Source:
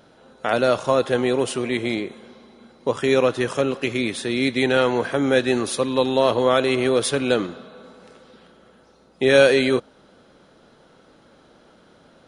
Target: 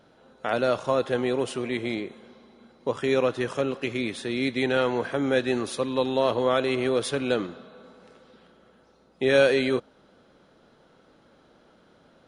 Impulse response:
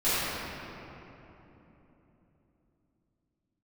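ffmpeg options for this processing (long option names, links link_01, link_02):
-af "highshelf=frequency=7100:gain=-7,volume=-5dB"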